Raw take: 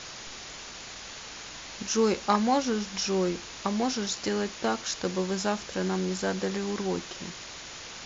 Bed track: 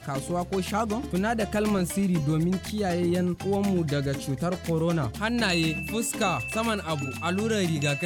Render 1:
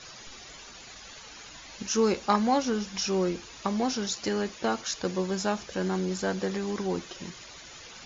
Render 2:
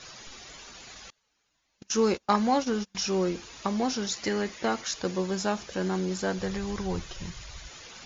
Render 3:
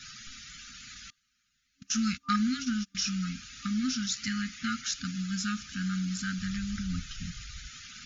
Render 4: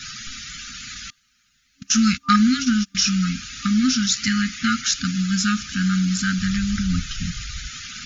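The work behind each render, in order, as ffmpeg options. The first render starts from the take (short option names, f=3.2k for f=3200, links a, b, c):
-af "afftdn=nr=11:nf=-43"
-filter_complex "[0:a]asettb=1/sr,asplit=3[a][b][c];[a]atrim=end=1.104[d];[b]atrim=start=1.1:end=2.95,asetpts=PTS-STARTPTS,afade=t=in:d=0.004:c=qsin,afade=t=out:st=1.846:d=0.004:c=qsin,agate=range=-29dB:threshold=-33dB:ratio=16:release=100:detection=peak[e];[c]atrim=start=2.946[f];[d][e]acrossfade=d=0.004:c1=hsin:c2=qsin[g];[g][f]acrossfade=d=0.004:c1=qsin:c2=hsin,asettb=1/sr,asplit=3[h][i][j];[h]atrim=end=4.104[k];[i]atrim=start=4.1:end=4.89,asetpts=PTS-STARTPTS,afade=t=in:d=0.004:c=qsin,afade=t=out:st=0.786:d=0.004:c=qsin,equalizer=f=2k:t=o:w=0.25:g=7.5[l];[j]atrim=start=4.886[m];[k][l]acrossfade=d=0.004:c1=hsin:c2=qsin[n];[n][m]acrossfade=d=0.004:c1=qsin:c2=hsin,asplit=3[o][p][q];[o]afade=t=out:st=6.38:d=0.02[r];[p]asubboost=boost=11.5:cutoff=81,afade=t=in:st=6.38:d=0.02,afade=t=out:st=7.67:d=0.02[s];[q]afade=t=in:st=7.67:d=0.02[t];[r][s][t]amix=inputs=3:normalize=0"
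-af "afftfilt=real='re*(1-between(b*sr/4096,270,1200))':imag='im*(1-between(b*sr/4096,270,1200))':win_size=4096:overlap=0.75,adynamicequalizer=threshold=0.00141:dfrequency=1900:dqfactor=7.9:tfrequency=1900:tqfactor=7.9:attack=5:release=100:ratio=0.375:range=2:mode=cutabove:tftype=bell"
-af "volume=11.5dB"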